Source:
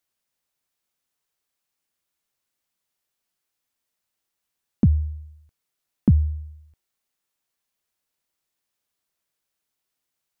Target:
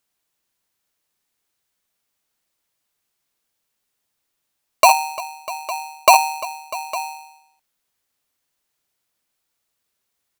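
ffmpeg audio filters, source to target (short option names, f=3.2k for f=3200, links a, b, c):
-af "aecho=1:1:59|347|647|856:0.251|0.126|0.126|0.158,aeval=exprs='val(0)*sgn(sin(2*PI*850*n/s))':c=same,volume=5dB"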